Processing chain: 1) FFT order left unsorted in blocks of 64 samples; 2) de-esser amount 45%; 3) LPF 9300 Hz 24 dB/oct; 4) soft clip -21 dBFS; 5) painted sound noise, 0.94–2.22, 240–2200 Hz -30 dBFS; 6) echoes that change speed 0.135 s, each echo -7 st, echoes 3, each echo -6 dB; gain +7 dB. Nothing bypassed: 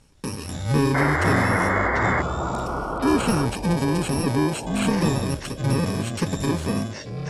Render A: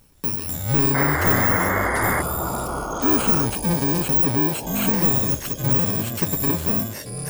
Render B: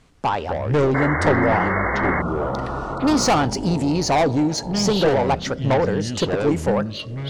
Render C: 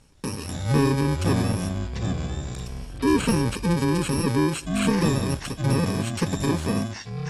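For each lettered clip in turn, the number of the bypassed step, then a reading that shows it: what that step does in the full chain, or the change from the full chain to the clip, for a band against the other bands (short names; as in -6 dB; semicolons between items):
3, 8 kHz band +7.0 dB; 1, 125 Hz band -4.0 dB; 5, 2 kHz band -7.5 dB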